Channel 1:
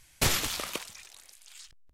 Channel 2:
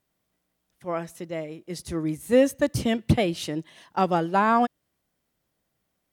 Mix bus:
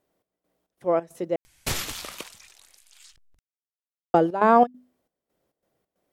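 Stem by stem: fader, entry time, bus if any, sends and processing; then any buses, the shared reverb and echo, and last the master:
−2.5 dB, 1.45 s, no send, upward compression, threshold −54 dBFS
−3.0 dB, 0.00 s, muted 0:01.36–0:04.14, no send, parametric band 490 Hz +12.5 dB 1.9 octaves; mains-hum notches 50/100/150/200/250 Hz; gate pattern "xx..xx.xx.x" 136 BPM −12 dB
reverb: not used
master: no processing

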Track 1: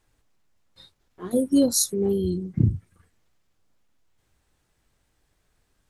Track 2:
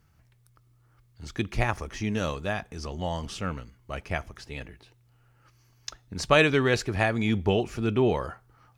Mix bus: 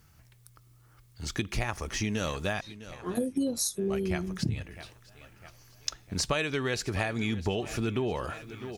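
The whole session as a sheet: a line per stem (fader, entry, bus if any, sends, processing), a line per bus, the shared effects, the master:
+1.5 dB, 1.85 s, no send, no echo send, pitch vibrato 0.43 Hz 37 cents
+3.0 dB, 0.00 s, muted 0:02.61–0:03.80, no send, echo send −21 dB, high-shelf EQ 3,400 Hz +8 dB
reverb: not used
echo: repeating echo 654 ms, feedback 53%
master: downward compressor 6 to 1, threshold −27 dBFS, peak gain reduction 15.5 dB

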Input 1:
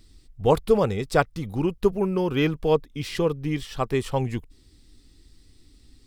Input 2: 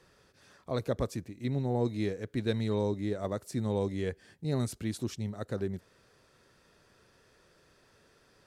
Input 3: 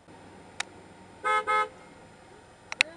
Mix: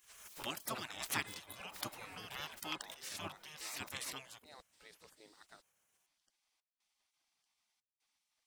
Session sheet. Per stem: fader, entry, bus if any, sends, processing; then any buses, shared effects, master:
−4.0 dB, 0.00 s, no send, no echo send, high-pass filter 760 Hz 12 dB per octave; background raised ahead of every attack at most 72 dB per second
−11.5 dB, 0.00 s, no send, no echo send, gate pattern "x.xxxxx.xxxx..xx" 75 BPM −60 dB
−8.0 dB, 0.00 s, no send, echo send −9 dB, shaped tremolo triangle 1.1 Hz, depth 80%; multiband upward and downward compressor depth 40%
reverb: not used
echo: repeating echo 1,158 ms, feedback 29%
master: gate on every frequency bin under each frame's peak −15 dB weak

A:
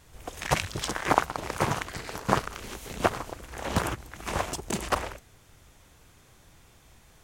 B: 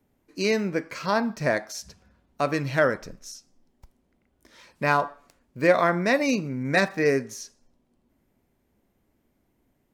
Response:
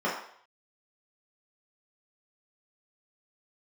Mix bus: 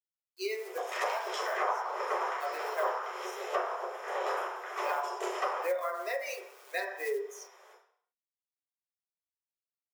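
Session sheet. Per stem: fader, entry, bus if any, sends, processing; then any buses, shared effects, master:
+2.0 dB, 0.50 s, send −5 dB, flanger 0.54 Hz, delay 5.1 ms, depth 6 ms, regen −69%; automatic ducking −11 dB, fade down 1.80 s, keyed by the second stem
−2.5 dB, 0.00 s, send −12.5 dB, spectral dynamics exaggerated over time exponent 2; high-shelf EQ 5,000 Hz −8.5 dB; log-companded quantiser 6 bits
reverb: on, RT60 0.60 s, pre-delay 3 ms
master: Butterworth high-pass 380 Hz 96 dB per octave; high-shelf EQ 9,100 Hz +9.5 dB; downward compressor 3 to 1, threshold −32 dBFS, peak gain reduction 14.5 dB

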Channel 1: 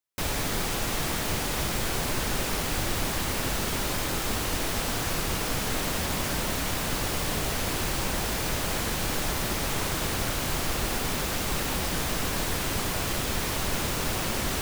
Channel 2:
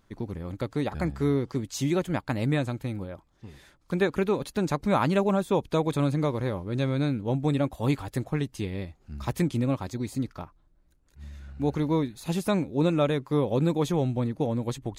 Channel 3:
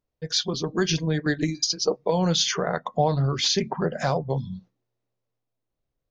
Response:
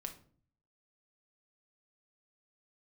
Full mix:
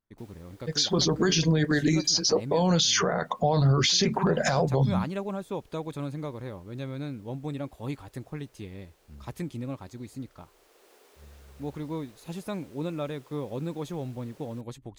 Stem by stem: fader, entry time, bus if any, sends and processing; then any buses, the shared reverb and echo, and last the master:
0:10.27 −20 dB → 0:10.92 −13 dB, 0.00 s, no send, four-pole ladder high-pass 360 Hz, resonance 55%; automatic ducking −7 dB, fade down 1.75 s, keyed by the second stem
−9.0 dB, 0.00 s, no send, noise gate −59 dBFS, range −15 dB
−0.5 dB, 0.45 s, no send, automatic gain control gain up to 9.5 dB; high-shelf EQ 4,800 Hz +6.5 dB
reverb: not used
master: brickwall limiter −14.5 dBFS, peak gain reduction 14.5 dB

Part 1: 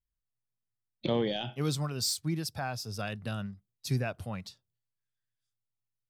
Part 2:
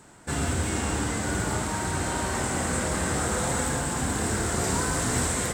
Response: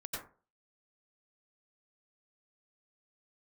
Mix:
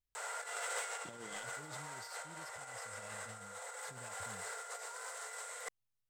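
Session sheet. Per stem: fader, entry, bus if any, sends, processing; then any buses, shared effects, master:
−6.0 dB, 0.00 s, no send, flanger 1.2 Hz, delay 9.4 ms, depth 1.3 ms, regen +67%
+1.5 dB, 0.15 s, no send, downward compressor 5 to 1, threshold −35 dBFS, peak gain reduction 12.5 dB; Butterworth high-pass 440 Hz 96 dB per octave; hollow resonant body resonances 1,400/2,000 Hz, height 14 dB, ringing for 85 ms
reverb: not used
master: compressor whose output falls as the input rises −43 dBFS, ratio −0.5

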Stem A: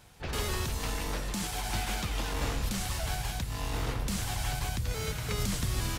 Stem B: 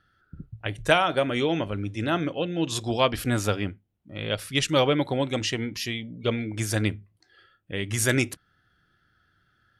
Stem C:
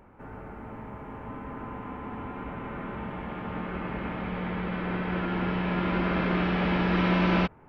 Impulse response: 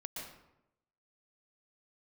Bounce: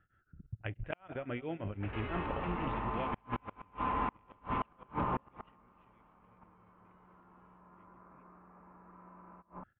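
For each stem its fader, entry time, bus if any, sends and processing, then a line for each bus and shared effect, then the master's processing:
−7.0 dB, 1.60 s, send −13 dB, echo send −5.5 dB, low-shelf EQ 310 Hz −6 dB
−2.0 dB, 0.00 s, no send, echo send −21 dB, low-shelf EQ 160 Hz +6 dB; output level in coarse steps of 17 dB; tremolo along a rectified sine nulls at 6 Hz
−3.0 dB, 1.95 s, send −18 dB, no echo send, low-pass with resonance 1,100 Hz, resonance Q 4.9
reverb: on, RT60 0.85 s, pre-delay 112 ms
echo: repeating echo 198 ms, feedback 48%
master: gate with flip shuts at −22 dBFS, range −33 dB; Butterworth low-pass 2,800 Hz 48 dB per octave

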